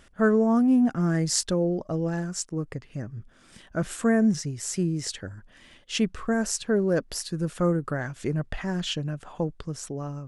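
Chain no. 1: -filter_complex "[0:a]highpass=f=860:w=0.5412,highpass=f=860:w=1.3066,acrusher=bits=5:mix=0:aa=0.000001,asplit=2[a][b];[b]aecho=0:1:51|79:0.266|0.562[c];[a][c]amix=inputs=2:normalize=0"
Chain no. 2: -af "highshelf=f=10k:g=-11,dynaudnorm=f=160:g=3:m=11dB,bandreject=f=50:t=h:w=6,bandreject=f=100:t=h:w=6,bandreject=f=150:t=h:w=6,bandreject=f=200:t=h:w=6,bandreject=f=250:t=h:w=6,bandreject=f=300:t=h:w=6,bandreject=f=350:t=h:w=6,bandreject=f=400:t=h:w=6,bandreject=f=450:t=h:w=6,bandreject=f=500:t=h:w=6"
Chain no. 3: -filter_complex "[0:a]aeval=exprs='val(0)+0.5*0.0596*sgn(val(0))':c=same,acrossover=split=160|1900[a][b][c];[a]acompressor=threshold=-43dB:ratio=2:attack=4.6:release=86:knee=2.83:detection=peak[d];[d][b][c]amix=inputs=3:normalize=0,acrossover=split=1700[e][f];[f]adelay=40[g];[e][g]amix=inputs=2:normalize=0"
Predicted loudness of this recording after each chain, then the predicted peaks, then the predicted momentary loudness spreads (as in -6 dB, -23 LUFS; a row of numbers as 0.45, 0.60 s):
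-32.5, -17.5, -24.5 LUFS; -6.0, -2.0, -5.5 dBFS; 16, 13, 10 LU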